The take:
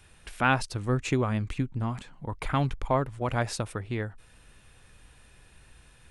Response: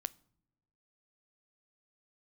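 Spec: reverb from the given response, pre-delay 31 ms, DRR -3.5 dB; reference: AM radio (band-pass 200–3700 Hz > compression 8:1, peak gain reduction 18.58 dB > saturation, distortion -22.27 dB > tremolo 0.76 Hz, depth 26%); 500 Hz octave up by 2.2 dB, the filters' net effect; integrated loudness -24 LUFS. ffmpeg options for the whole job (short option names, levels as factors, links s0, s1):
-filter_complex "[0:a]equalizer=f=500:t=o:g=3,asplit=2[s0][s1];[1:a]atrim=start_sample=2205,adelay=31[s2];[s1][s2]afir=irnorm=-1:irlink=0,volume=1.78[s3];[s0][s3]amix=inputs=2:normalize=0,highpass=200,lowpass=3700,acompressor=threshold=0.0282:ratio=8,asoftclip=threshold=0.0944,tremolo=f=0.76:d=0.26,volume=5.31"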